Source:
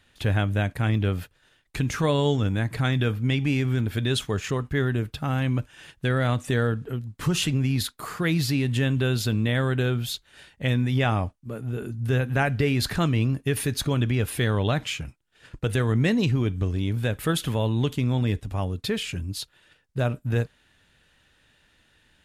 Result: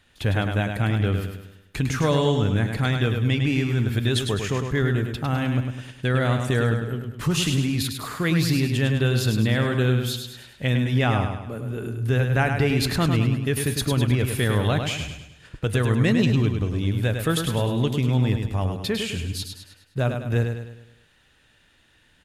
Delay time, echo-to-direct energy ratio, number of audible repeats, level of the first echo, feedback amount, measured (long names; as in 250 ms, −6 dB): 103 ms, −5.0 dB, 5, −6.0 dB, 46%